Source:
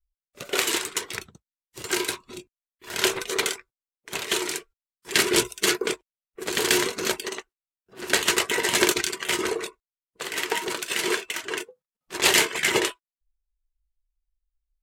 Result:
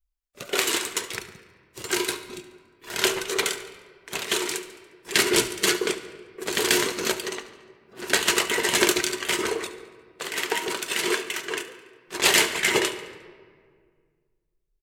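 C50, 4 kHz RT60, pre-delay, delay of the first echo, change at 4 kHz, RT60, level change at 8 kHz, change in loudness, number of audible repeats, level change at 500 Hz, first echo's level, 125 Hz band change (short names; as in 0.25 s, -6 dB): 11.0 dB, 1.0 s, 3 ms, 71 ms, +0.5 dB, 1.9 s, 0.0 dB, +0.5 dB, 3, +0.5 dB, -17.0 dB, +0.5 dB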